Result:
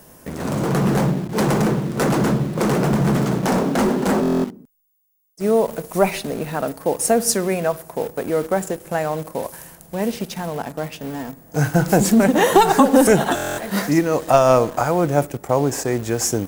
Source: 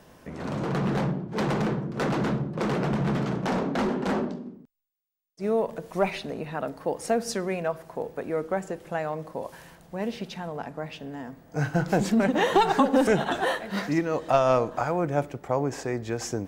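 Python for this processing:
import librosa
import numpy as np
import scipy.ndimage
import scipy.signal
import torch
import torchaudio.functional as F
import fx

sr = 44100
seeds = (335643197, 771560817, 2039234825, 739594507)

p1 = fx.curve_eq(x, sr, hz=(390.0, 3700.0, 11000.0), db=(0, -3, 14))
p2 = fx.quant_dither(p1, sr, seeds[0], bits=6, dither='none')
p3 = p1 + (p2 * 10.0 ** (-7.0 / 20.0))
p4 = fx.buffer_glitch(p3, sr, at_s=(4.21, 13.35), block=1024, repeats=9)
y = p4 * 10.0 ** (5.0 / 20.0)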